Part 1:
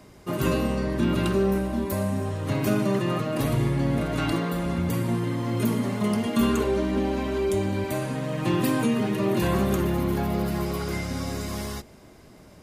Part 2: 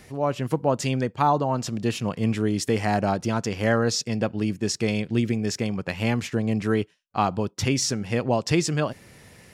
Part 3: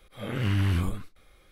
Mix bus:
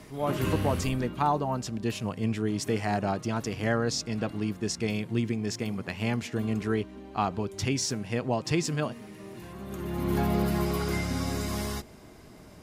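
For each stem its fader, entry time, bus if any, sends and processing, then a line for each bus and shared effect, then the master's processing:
0.0 dB, 0.00 s, no send, automatic ducking −20 dB, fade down 1.40 s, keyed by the second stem
−5.0 dB, 0.00 s, no send, pitch vibrato 0.9 Hz 10 cents
−7.5 dB, 0.00 s, no send, high-shelf EQ 6,000 Hz +11.5 dB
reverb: not used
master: notch filter 540 Hz, Q 12

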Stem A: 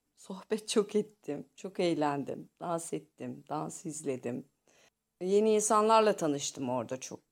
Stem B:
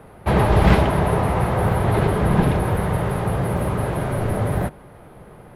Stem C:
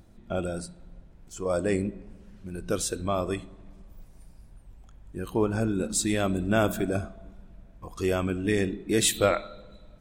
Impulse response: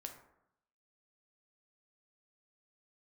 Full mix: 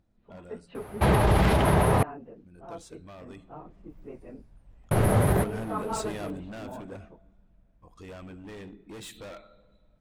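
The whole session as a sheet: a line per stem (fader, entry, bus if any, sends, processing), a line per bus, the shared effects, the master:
−8.5 dB, 0.00 s, no send, random phases in long frames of 50 ms; inverse Chebyshev low-pass filter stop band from 9,000 Hz, stop band 70 dB
+0.5 dB, 0.75 s, muted 0:02.03–0:04.91, no send, high-shelf EQ 5,000 Hz +6.5 dB
0:03.21 −15.5 dB → 0:03.86 −4.5 dB → 0:06.01 −4.5 dB → 0:06.72 −12.5 dB, 0.00 s, no send, high-shelf EQ 7,000 Hz −11.5 dB; notch filter 370 Hz, Q 12; hard clipping −27 dBFS, distortion −7 dB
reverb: not used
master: brickwall limiter −12.5 dBFS, peak gain reduction 10.5 dB

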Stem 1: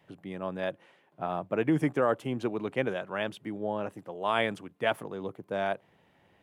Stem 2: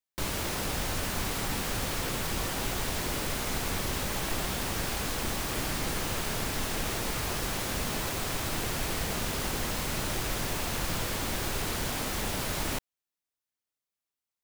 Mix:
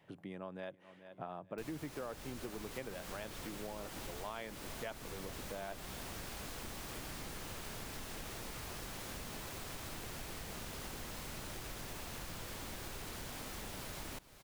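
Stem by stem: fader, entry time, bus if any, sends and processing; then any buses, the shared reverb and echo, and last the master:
−2.5 dB, 0.00 s, no send, echo send −21 dB, no processing
−7.0 dB, 1.40 s, no send, echo send −21 dB, no processing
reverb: not used
echo: repeating echo 429 ms, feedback 50%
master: downward compressor 4 to 1, threshold −43 dBFS, peak gain reduction 16.5 dB

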